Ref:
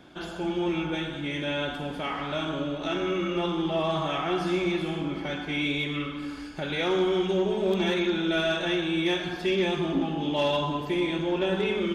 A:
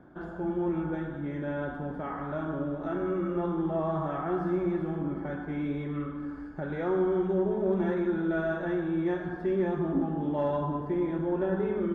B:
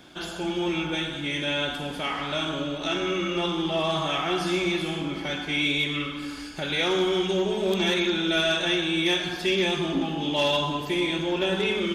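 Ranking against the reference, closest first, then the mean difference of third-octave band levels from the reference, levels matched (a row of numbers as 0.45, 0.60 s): B, A; 3.0, 6.5 dB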